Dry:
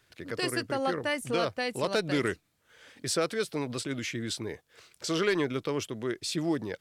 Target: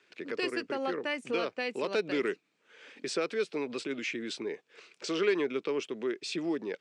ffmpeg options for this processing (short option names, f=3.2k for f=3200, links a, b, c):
-filter_complex "[0:a]highshelf=f=5.7k:g=-8,asplit=2[a][b];[b]acompressor=threshold=-37dB:ratio=6,volume=3dB[c];[a][c]amix=inputs=2:normalize=0,highpass=f=200:w=0.5412,highpass=f=200:w=1.3066,equalizer=f=410:t=q:w=4:g=6,equalizer=f=680:t=q:w=4:g=-3,equalizer=f=2.5k:t=q:w=4:g=8,lowpass=f=8k:w=0.5412,lowpass=f=8k:w=1.3066,volume=-7dB"